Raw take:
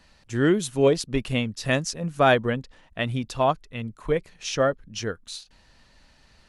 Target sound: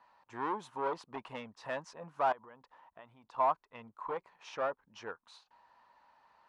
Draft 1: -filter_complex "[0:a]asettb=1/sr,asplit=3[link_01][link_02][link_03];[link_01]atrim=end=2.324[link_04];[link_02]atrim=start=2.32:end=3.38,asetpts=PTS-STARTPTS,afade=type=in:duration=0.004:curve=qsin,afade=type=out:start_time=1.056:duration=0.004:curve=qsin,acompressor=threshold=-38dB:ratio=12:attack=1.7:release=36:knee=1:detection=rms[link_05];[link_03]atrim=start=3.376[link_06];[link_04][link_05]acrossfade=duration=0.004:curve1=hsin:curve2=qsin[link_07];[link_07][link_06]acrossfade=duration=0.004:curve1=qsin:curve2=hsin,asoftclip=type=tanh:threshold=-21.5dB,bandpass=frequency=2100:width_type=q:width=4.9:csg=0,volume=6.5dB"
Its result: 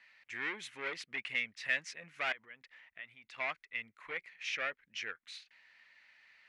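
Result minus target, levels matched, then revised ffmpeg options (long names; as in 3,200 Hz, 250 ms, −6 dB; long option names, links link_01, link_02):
1,000 Hz band −11.5 dB
-filter_complex "[0:a]asettb=1/sr,asplit=3[link_01][link_02][link_03];[link_01]atrim=end=2.324[link_04];[link_02]atrim=start=2.32:end=3.38,asetpts=PTS-STARTPTS,afade=type=in:duration=0.004:curve=qsin,afade=type=out:start_time=1.056:duration=0.004:curve=qsin,acompressor=threshold=-38dB:ratio=12:attack=1.7:release=36:knee=1:detection=rms[link_05];[link_03]atrim=start=3.376[link_06];[link_04][link_05]acrossfade=duration=0.004:curve1=hsin:curve2=qsin[link_07];[link_07][link_06]acrossfade=duration=0.004:curve1=qsin:curve2=hsin,asoftclip=type=tanh:threshold=-21.5dB,bandpass=frequency=960:width_type=q:width=4.9:csg=0,volume=6.5dB"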